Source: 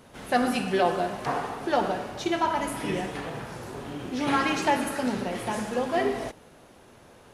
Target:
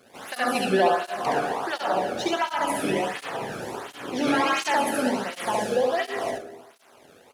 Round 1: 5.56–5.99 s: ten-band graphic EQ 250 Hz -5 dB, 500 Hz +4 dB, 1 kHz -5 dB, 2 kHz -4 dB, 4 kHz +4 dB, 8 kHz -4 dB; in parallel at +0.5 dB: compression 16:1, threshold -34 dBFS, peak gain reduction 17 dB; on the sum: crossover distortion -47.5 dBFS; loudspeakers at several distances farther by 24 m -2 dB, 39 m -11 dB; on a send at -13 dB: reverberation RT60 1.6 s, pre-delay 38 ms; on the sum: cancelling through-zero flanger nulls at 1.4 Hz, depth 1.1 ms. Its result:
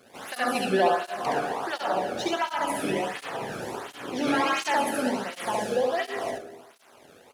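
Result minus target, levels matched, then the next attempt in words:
compression: peak gain reduction +7 dB
5.56–5.99 s: ten-band graphic EQ 250 Hz -5 dB, 500 Hz +4 dB, 1 kHz -5 dB, 2 kHz -4 dB, 4 kHz +4 dB, 8 kHz -4 dB; in parallel at +0.5 dB: compression 16:1, threshold -26.5 dBFS, peak gain reduction 10 dB; on the sum: crossover distortion -47.5 dBFS; loudspeakers at several distances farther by 24 m -2 dB, 39 m -11 dB; on a send at -13 dB: reverberation RT60 1.6 s, pre-delay 38 ms; on the sum: cancelling through-zero flanger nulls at 1.4 Hz, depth 1.1 ms

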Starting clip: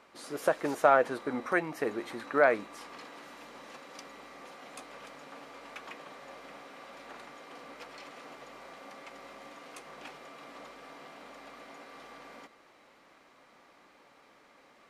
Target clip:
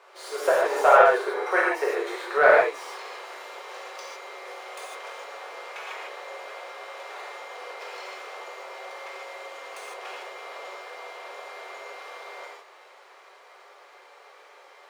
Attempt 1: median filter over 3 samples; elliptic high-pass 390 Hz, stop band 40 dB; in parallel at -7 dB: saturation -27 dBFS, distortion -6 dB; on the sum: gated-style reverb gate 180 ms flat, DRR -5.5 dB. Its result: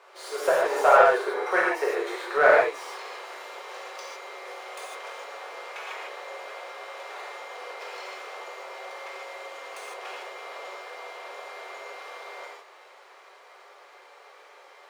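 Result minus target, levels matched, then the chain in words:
saturation: distortion +8 dB
median filter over 3 samples; elliptic high-pass 390 Hz, stop band 40 dB; in parallel at -7 dB: saturation -18.5 dBFS, distortion -14 dB; on the sum: gated-style reverb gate 180 ms flat, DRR -5.5 dB

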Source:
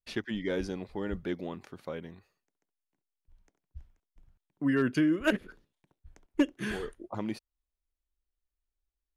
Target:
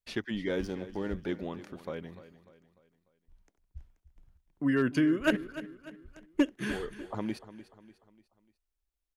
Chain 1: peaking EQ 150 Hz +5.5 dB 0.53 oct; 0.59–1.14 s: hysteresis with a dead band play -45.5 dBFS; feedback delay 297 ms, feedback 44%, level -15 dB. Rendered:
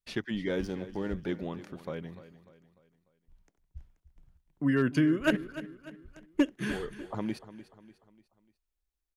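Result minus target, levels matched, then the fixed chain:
125 Hz band +3.0 dB
0.59–1.14 s: hysteresis with a dead band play -45.5 dBFS; feedback delay 297 ms, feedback 44%, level -15 dB

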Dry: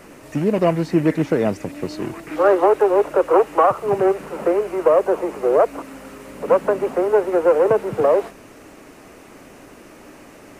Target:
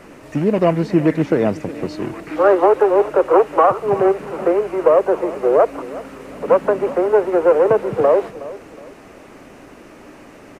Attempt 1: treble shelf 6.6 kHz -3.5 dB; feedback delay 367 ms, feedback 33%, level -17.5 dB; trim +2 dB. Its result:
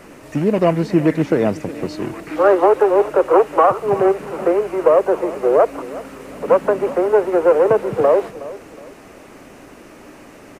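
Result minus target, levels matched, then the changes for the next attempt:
8 kHz band +3.5 dB
change: treble shelf 6.6 kHz -9.5 dB

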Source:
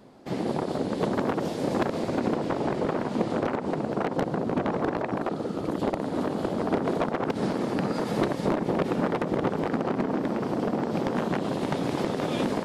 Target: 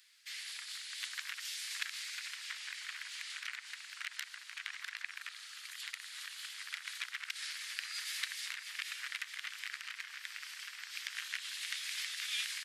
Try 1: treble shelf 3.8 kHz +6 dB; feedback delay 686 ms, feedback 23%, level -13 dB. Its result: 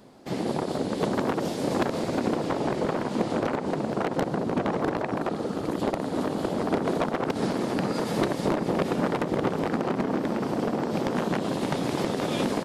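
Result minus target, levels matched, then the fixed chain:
2 kHz band -10.0 dB
steep high-pass 1.8 kHz 36 dB/octave; treble shelf 3.8 kHz +6 dB; feedback delay 686 ms, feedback 23%, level -13 dB

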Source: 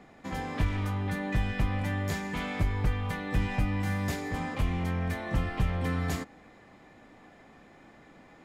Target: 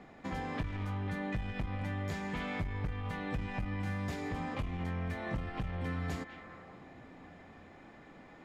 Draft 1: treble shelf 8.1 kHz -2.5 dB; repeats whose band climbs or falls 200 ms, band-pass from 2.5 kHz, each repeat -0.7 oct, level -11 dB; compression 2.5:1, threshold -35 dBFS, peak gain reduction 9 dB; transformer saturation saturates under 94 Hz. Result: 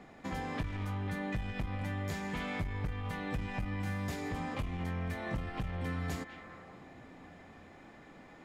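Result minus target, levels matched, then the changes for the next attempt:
8 kHz band +4.5 dB
change: treble shelf 8.1 kHz -13 dB

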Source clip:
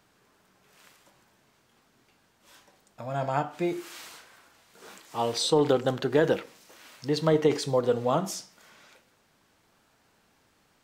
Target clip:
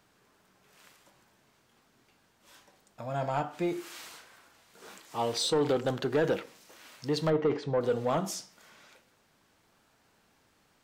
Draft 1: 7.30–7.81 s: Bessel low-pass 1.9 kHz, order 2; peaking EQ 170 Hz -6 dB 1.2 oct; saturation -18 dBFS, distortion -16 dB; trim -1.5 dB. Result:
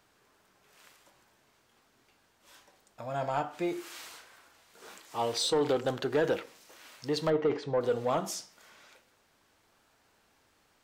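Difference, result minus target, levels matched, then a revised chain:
125 Hz band -4.0 dB
7.30–7.81 s: Bessel low-pass 1.9 kHz, order 2; saturation -18 dBFS, distortion -14 dB; trim -1.5 dB

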